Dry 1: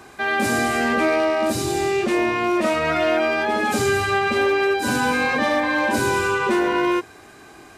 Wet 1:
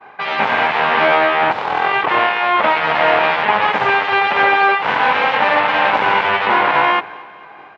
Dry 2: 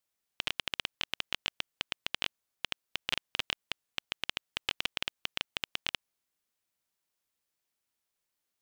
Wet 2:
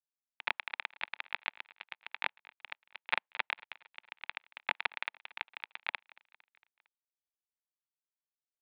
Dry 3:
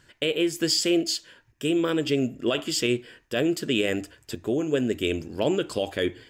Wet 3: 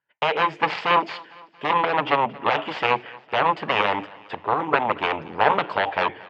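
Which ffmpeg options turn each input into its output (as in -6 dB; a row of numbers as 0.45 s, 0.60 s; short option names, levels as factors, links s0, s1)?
-filter_complex "[0:a]aeval=exprs='0.335*(cos(1*acos(clip(val(0)/0.335,-1,1)))-cos(1*PI/2))+0.015*(cos(3*acos(clip(val(0)/0.335,-1,1)))-cos(3*PI/2))+0.119*(cos(7*acos(clip(val(0)/0.335,-1,1)))-cos(7*PI/2))':c=same,agate=range=0.0224:threshold=0.0178:ratio=3:detection=peak,highpass=230,equalizer=f=250:t=q:w=4:g=-10,equalizer=f=350:t=q:w=4:g=-10,equalizer=f=880:t=q:w=4:g=8,lowpass=f=2700:w=0.5412,lowpass=f=2700:w=1.3066,asplit=2[s0][s1];[s1]aecho=0:1:228|456|684|912:0.075|0.0427|0.0244|0.0139[s2];[s0][s2]amix=inputs=2:normalize=0,volume=1.88"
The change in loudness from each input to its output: +5.5 LU, -2.5 LU, +3.0 LU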